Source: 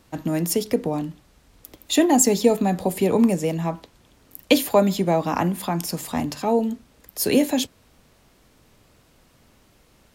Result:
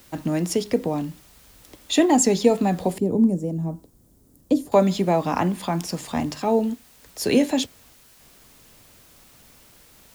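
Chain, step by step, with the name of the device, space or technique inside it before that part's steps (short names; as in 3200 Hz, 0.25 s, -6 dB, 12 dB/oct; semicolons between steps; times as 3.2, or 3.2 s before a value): worn cassette (LPF 7700 Hz 12 dB/oct; wow and flutter; level dips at 6.75/7.93, 0.269 s -7 dB; white noise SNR 30 dB); 2.98–4.72 EQ curve 290 Hz 0 dB, 2500 Hz -26 dB, 8100 Hz -10 dB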